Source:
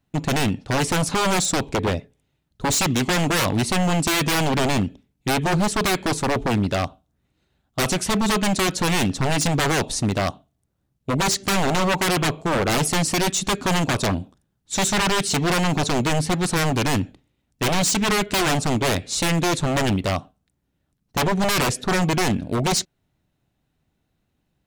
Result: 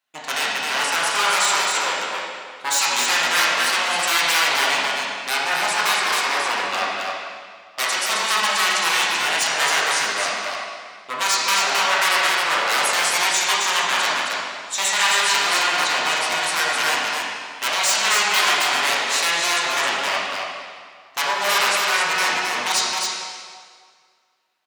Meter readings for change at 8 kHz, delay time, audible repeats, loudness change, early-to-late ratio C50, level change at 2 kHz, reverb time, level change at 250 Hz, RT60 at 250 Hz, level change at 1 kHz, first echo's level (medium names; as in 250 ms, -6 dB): +3.0 dB, 266 ms, 1, +2.5 dB, -3.5 dB, +7.5 dB, 1.9 s, -17.5 dB, 1.8 s, +4.0 dB, -3.0 dB